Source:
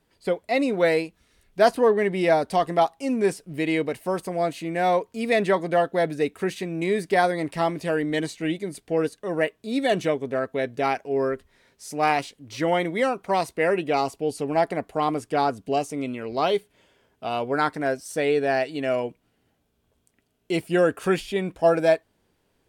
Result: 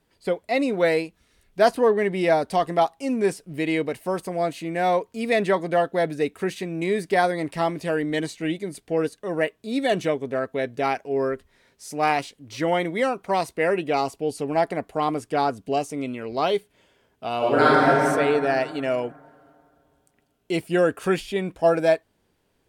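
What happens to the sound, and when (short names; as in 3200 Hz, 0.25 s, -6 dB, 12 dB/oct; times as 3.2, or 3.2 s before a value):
17.37–17.87 reverb throw, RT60 2.5 s, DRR -8.5 dB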